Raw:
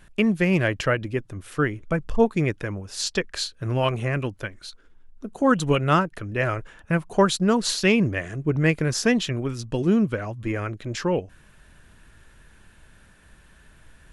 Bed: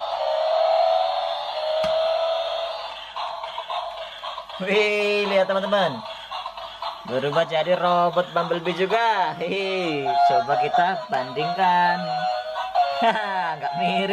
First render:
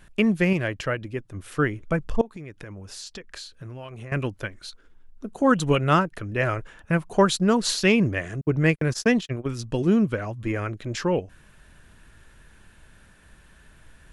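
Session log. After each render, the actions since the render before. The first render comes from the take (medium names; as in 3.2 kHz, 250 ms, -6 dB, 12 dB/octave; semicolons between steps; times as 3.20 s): 0.53–1.34 s: gain -4.5 dB; 2.21–4.12 s: compression, threshold -36 dBFS; 8.41–9.46 s: gate -27 dBFS, range -50 dB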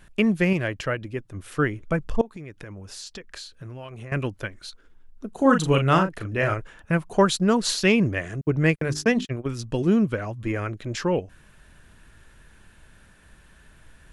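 5.31–6.54 s: doubling 37 ms -6 dB; 8.76–9.25 s: hum notches 50/100/150/200/250/300/350/400 Hz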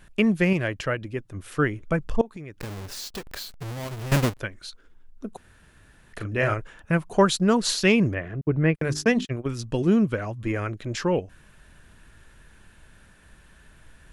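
2.59–4.39 s: square wave that keeps the level; 5.37–6.13 s: room tone; 8.14–8.75 s: distance through air 400 m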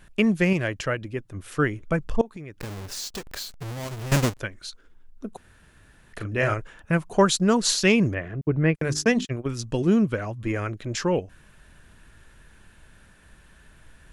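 dynamic bell 6.7 kHz, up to +5 dB, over -49 dBFS, Q 1.4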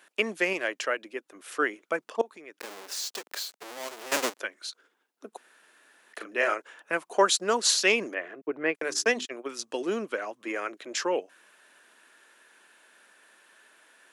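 Bessel high-pass 480 Hz, order 6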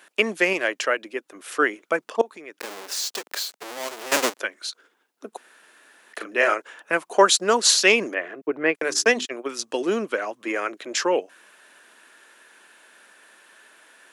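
trim +6 dB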